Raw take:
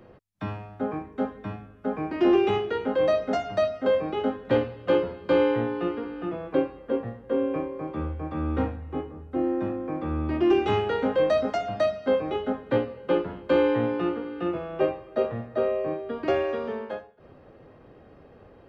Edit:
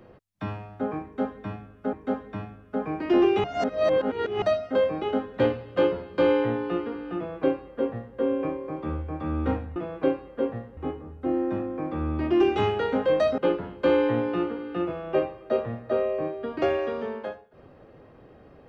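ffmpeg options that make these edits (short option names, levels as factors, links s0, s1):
-filter_complex "[0:a]asplit=7[s0][s1][s2][s3][s4][s5][s6];[s0]atrim=end=1.932[s7];[s1]atrim=start=1.038:end=2.552[s8];[s2]atrim=start=2.548:end=3.532,asetpts=PTS-STARTPTS,areverse[s9];[s3]atrim=start=3.528:end=8.872[s10];[s4]atrim=start=6.268:end=7.282[s11];[s5]atrim=start=8.868:end=11.482[s12];[s6]atrim=start=13.038[s13];[s7][s8]acrossfade=d=0.004:c1=hsin:c2=hsin[s14];[s14][s9]acrossfade=d=0.004:c1=hsin:c2=hsin[s15];[s15][s10]acrossfade=d=0.004:c1=hsin:c2=hsin[s16];[s16][s11]acrossfade=d=0.004:c1=hsin:c2=hsin[s17];[s17][s12]acrossfade=d=0.004:c1=hsin:c2=hsin[s18];[s18][s13]acrossfade=d=0.004:c1=hsin:c2=hsin"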